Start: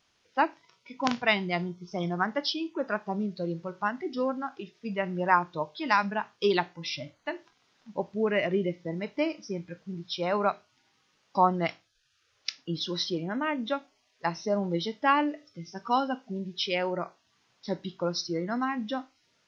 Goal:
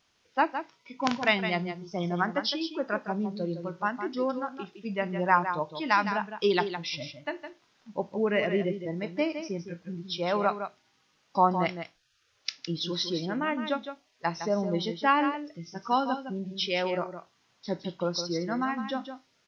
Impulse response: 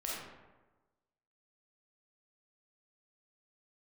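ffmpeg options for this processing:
-af "aecho=1:1:161:0.355"

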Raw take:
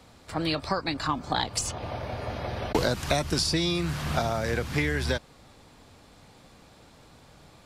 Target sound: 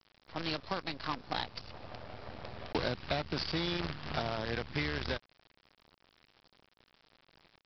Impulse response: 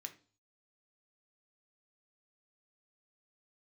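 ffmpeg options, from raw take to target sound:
-af "highpass=f=42:p=1,aresample=11025,acrusher=bits=5:dc=4:mix=0:aa=0.000001,aresample=44100,volume=-8.5dB"

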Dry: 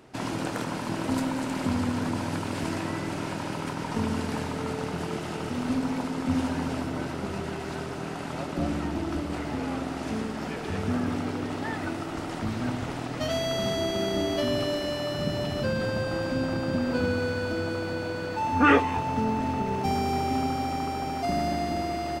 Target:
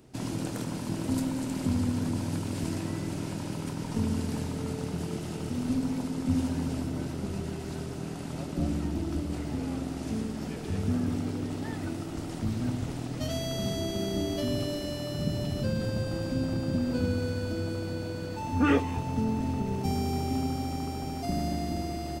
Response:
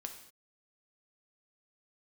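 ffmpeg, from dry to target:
-af "equalizer=f=1.3k:w=0.33:g=-13.5,volume=3dB"

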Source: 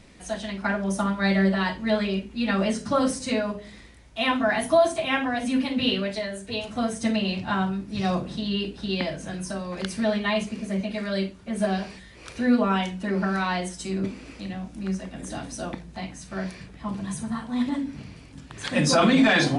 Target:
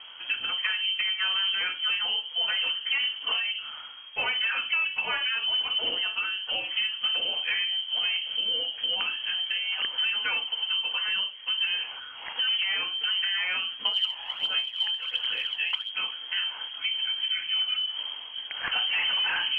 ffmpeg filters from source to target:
-filter_complex "[0:a]volume=18.5dB,asoftclip=hard,volume=-18.5dB,lowpass=f=2.8k:t=q:w=0.5098,lowpass=f=2.8k:t=q:w=0.6013,lowpass=f=2.8k:t=q:w=0.9,lowpass=f=2.8k:t=q:w=2.563,afreqshift=-3300,acompressor=threshold=-33dB:ratio=4,asettb=1/sr,asplit=3[a][b][c];[a]atrim=end=13.854[d];[b]atrim=start=13.85:end=15.9,asetpts=PTS-STARTPTS,afade=t=in:d=0.004:c=qsin,afade=t=out:st=2.046:d=0.004:c=qsin,aphaser=in_gain=1:out_gain=1:delay=1.2:decay=0.52:speed=1.4:type=sinusoidal[e];[c]atrim=start=15.896[f];[d][e]acrossfade=d=0.004:c1=hsin:c2=qsin[g];[g][f]acrossfade=d=0.004:c1=qsin:c2=hsin,equalizer=f=2.4k:w=0.34:g=5.5,volume=1dB"

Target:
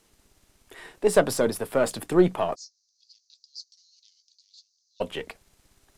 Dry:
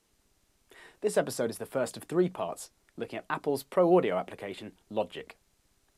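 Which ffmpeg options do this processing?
-filter_complex "[0:a]aeval=exprs='if(lt(val(0),0),0.708*val(0),val(0))':c=same,asplit=3[a][b][c];[a]afade=t=out:st=2.54:d=0.02[d];[b]asuperpass=centerf=5300:order=8:qfactor=2.3,afade=t=in:st=2.54:d=0.02,afade=t=out:st=5:d=0.02[e];[c]afade=t=in:st=5:d=0.02[f];[d][e][f]amix=inputs=3:normalize=0,volume=9dB"

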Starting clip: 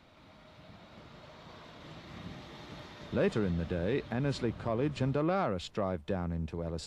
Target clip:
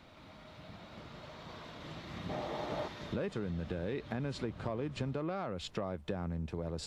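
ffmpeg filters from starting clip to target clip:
-filter_complex "[0:a]acompressor=threshold=-36dB:ratio=6,asettb=1/sr,asplit=3[a][b][c];[a]atrim=end=2.294[d];[b]atrim=start=2.29:end=2.88,asetpts=PTS-STARTPTS,afade=t=in:d=0.004:c=qsin,afade=t=out:st=0.586:d=0.004:c=qsin,equalizer=f=630:t=o:w=1.6:g=13.5[e];[c]atrim=start=2.876[f];[d][e]acrossfade=d=0.004:c1=hsin:c2=qsin[g];[g][f]acrossfade=d=0.004:c1=qsin:c2=hsin,volume=2.5dB"

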